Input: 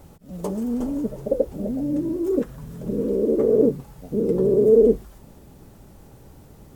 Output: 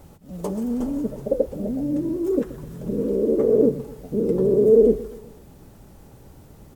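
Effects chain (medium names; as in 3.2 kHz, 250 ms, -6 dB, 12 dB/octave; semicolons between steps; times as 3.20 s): feedback delay 127 ms, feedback 47%, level -17 dB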